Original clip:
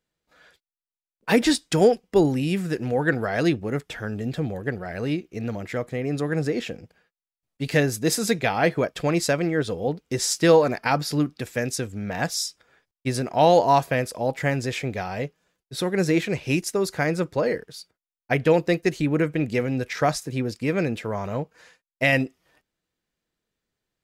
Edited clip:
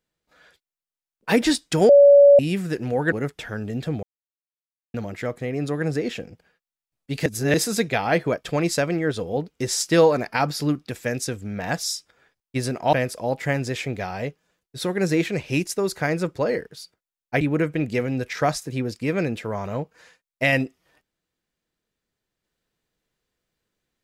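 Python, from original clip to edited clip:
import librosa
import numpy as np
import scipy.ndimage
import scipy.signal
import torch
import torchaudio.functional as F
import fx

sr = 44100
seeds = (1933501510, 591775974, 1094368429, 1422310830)

y = fx.edit(x, sr, fx.bleep(start_s=1.89, length_s=0.5, hz=568.0, db=-7.5),
    fx.cut(start_s=3.12, length_s=0.51),
    fx.silence(start_s=4.54, length_s=0.91),
    fx.reverse_span(start_s=7.77, length_s=0.28),
    fx.cut(start_s=13.44, length_s=0.46),
    fx.cut(start_s=18.38, length_s=0.63), tone=tone)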